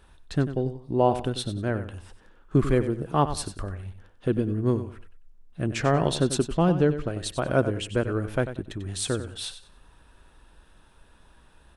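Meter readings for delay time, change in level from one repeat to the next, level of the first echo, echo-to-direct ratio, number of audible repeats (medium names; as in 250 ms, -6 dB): 94 ms, -12.0 dB, -11.5 dB, -11.0 dB, 2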